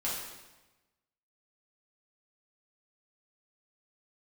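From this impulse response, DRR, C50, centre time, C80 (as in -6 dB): -8.0 dB, 1.0 dB, 67 ms, 4.0 dB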